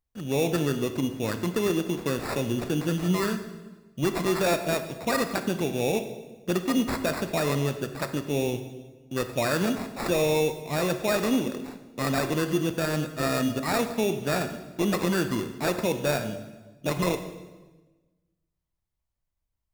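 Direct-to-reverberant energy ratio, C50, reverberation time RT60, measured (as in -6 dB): 8.0 dB, 10.0 dB, 1.2 s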